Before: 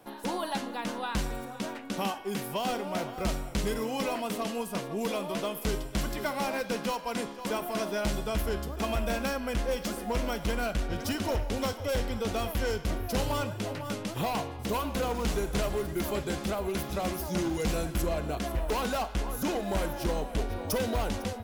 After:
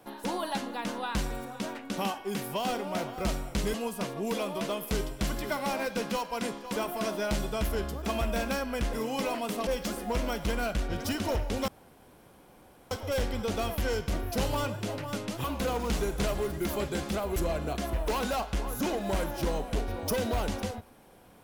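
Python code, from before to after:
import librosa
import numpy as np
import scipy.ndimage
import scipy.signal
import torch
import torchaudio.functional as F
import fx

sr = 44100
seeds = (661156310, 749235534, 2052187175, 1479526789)

y = fx.edit(x, sr, fx.move(start_s=3.74, length_s=0.74, to_s=9.67),
    fx.insert_room_tone(at_s=11.68, length_s=1.23),
    fx.cut(start_s=14.21, length_s=0.58),
    fx.cut(start_s=16.71, length_s=1.27), tone=tone)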